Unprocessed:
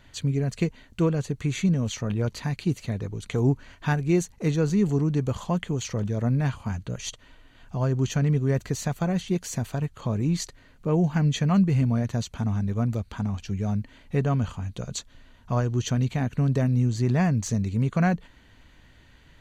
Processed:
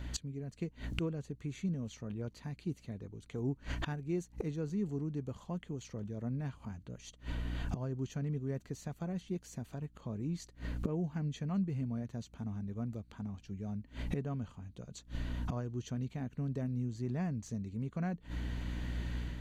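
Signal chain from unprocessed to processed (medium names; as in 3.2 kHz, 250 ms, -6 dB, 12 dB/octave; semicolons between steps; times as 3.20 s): peaking EQ 270 Hz +6.5 dB 2.1 oct; mains buzz 60 Hz, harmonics 5, -45 dBFS -8 dB/octave; level rider gain up to 5 dB; inverted gate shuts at -26 dBFS, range -25 dB; trim +2.5 dB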